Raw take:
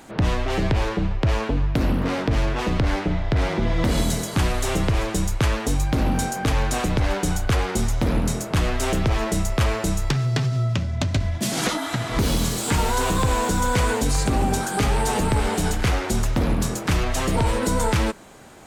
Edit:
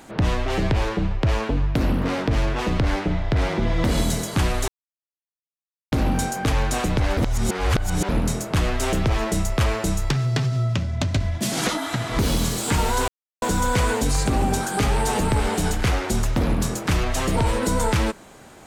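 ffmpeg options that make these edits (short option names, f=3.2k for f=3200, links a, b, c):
-filter_complex "[0:a]asplit=7[a][b][c][d][e][f][g];[a]atrim=end=4.68,asetpts=PTS-STARTPTS,afade=t=out:st=4.676:d=0.004:c=hsin[h];[b]atrim=start=4.68:end=5.92,asetpts=PTS-STARTPTS,volume=0[i];[c]atrim=start=5.92:end=7.172,asetpts=PTS-STARTPTS,afade=t=in:d=0.004:c=hsin[j];[d]atrim=start=7.168:end=8.092,asetpts=PTS-STARTPTS,areverse[k];[e]atrim=start=8.088:end=13.08,asetpts=PTS-STARTPTS,afade=t=out:st=4.988:d=0.004:c=hsin[l];[f]atrim=start=13.08:end=13.42,asetpts=PTS-STARTPTS,volume=0[m];[g]atrim=start=13.42,asetpts=PTS-STARTPTS,afade=t=in:d=0.004:c=hsin[n];[h][i][j]concat=n=3:v=0:a=1[o];[o][k]acrossfade=d=0.004:c1=hsin:c2=hsin[p];[l][m][n]concat=n=3:v=0:a=1[q];[p][q]acrossfade=d=0.004:c1=hsin:c2=hsin"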